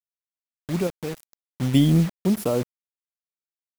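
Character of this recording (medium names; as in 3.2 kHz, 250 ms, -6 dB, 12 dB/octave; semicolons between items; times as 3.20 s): random-step tremolo 2.3 Hz, depth 80%; a quantiser's noise floor 6-bit, dither none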